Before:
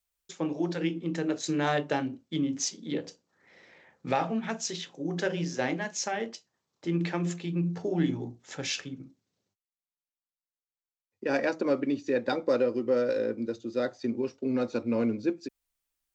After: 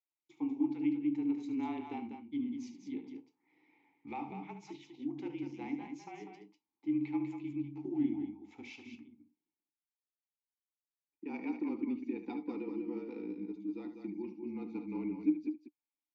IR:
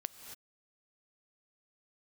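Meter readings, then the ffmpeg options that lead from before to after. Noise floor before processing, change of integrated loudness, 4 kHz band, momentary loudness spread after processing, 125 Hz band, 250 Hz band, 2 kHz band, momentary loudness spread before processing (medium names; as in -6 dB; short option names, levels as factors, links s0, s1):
under -85 dBFS, -8.0 dB, under -20 dB, 16 LU, -16.0 dB, -4.5 dB, -17.0 dB, 9 LU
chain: -filter_complex "[0:a]afreqshift=-33,asplit=3[s0][s1][s2];[s0]bandpass=f=300:t=q:w=8,volume=1[s3];[s1]bandpass=f=870:t=q:w=8,volume=0.501[s4];[s2]bandpass=f=2240:t=q:w=8,volume=0.355[s5];[s3][s4][s5]amix=inputs=3:normalize=0,aecho=1:1:72.89|195.3:0.282|0.447"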